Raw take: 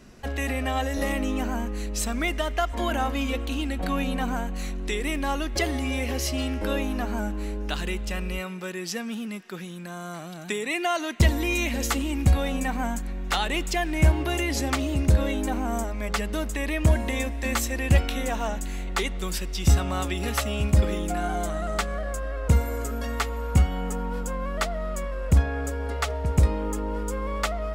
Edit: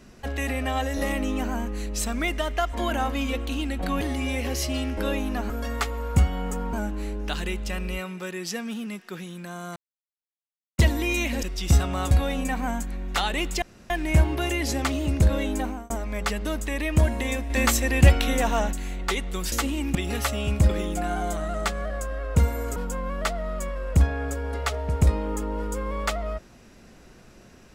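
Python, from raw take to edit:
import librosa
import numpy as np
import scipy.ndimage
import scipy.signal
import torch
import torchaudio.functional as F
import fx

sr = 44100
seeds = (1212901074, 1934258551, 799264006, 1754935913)

y = fx.edit(x, sr, fx.cut(start_s=4.01, length_s=1.64),
    fx.silence(start_s=10.17, length_s=1.02),
    fx.swap(start_s=11.84, length_s=0.43, other_s=19.4, other_length_s=0.68),
    fx.insert_room_tone(at_s=13.78, length_s=0.28),
    fx.fade_out_span(start_s=15.49, length_s=0.29),
    fx.clip_gain(start_s=17.38, length_s=1.23, db=4.5),
    fx.move(start_s=22.89, length_s=1.23, to_s=7.14), tone=tone)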